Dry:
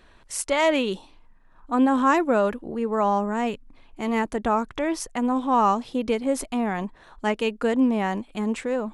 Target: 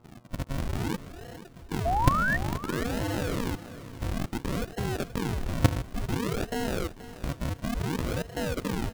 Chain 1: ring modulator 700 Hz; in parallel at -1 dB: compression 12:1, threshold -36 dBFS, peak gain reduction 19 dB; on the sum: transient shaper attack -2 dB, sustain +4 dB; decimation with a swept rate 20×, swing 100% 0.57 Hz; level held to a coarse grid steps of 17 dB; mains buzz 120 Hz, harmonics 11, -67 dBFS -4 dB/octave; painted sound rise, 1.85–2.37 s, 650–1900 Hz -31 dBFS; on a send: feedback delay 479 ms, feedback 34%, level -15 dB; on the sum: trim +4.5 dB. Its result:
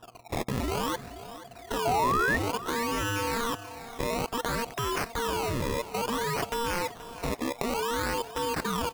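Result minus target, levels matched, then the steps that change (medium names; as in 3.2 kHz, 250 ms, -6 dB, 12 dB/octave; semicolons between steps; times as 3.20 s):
decimation with a swept rate: distortion -14 dB
change: decimation with a swept rate 73×, swing 100% 0.57 Hz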